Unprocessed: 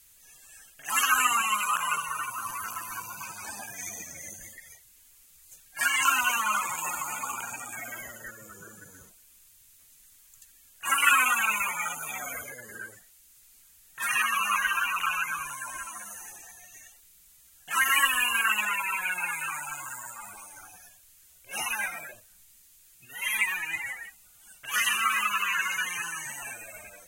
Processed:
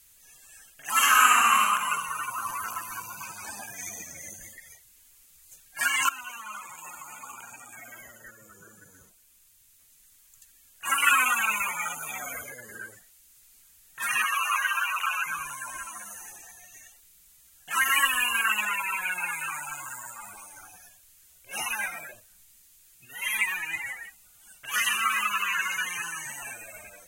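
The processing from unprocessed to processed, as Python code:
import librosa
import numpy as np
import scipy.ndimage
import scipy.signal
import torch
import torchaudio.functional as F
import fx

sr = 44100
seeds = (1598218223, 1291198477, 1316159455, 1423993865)

y = fx.reverb_throw(x, sr, start_s=0.92, length_s=0.68, rt60_s=1.3, drr_db=-4.0)
y = fx.peak_eq(y, sr, hz=720.0, db=4.0, octaves=1.9, at=(2.28, 2.81))
y = fx.highpass(y, sr, hz=450.0, slope=24, at=(14.24, 15.26))
y = fx.edit(y, sr, fx.fade_in_from(start_s=6.09, length_s=5.11, floor_db=-15.5), tone=tone)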